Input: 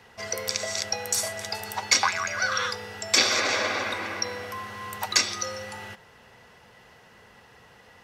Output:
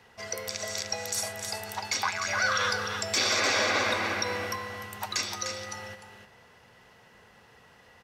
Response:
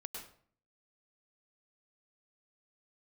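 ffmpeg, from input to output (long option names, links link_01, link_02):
-filter_complex "[0:a]asettb=1/sr,asplit=3[link_01][link_02][link_03];[link_01]atrim=end=2.284[link_04];[link_02]atrim=start=2.28:end=4.56,asetpts=PTS-STARTPTS,afade=type=in:duration=0.004:curve=qsin,afade=type=out:start_time=2.276:duration=0.004:curve=qsin,acontrast=36[link_05];[link_03]atrim=start=4.556[link_06];[link_04][link_05]acrossfade=duration=0.004:curve1=hsin:curve2=qsin[link_07];[link_07][link_06]acrossfade=duration=0.004:curve1=qsin:curve2=hsin,alimiter=limit=-12.5dB:level=0:latency=1:release=52,aecho=1:1:301:0.447,volume=-4dB"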